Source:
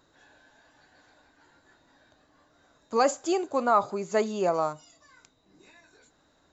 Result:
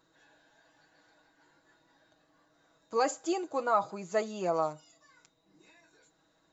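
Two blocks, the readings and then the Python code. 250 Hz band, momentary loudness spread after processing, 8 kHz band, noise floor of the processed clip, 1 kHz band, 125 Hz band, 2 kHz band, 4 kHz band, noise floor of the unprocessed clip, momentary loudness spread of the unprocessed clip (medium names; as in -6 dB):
-5.5 dB, 5 LU, no reading, -71 dBFS, -5.0 dB, -4.5 dB, -4.0 dB, -5.0 dB, -66 dBFS, 7 LU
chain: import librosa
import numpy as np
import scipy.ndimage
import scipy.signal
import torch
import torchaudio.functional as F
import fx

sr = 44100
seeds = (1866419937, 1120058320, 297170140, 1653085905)

y = fx.low_shelf(x, sr, hz=70.0, db=-7.5)
y = y + 0.58 * np.pad(y, (int(6.2 * sr / 1000.0), 0))[:len(y)]
y = y * librosa.db_to_amplitude(-6.0)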